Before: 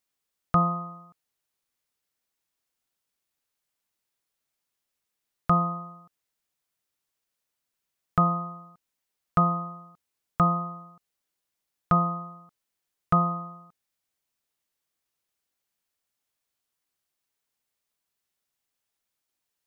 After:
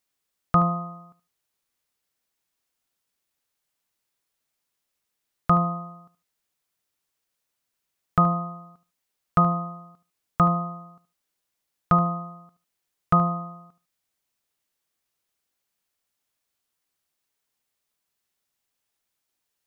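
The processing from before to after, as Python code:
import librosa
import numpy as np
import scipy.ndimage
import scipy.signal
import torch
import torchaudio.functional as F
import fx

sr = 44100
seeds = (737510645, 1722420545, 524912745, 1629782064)

p1 = x + fx.echo_feedback(x, sr, ms=75, feedback_pct=18, wet_db=-15.5, dry=0)
y = p1 * 10.0 ** (2.5 / 20.0)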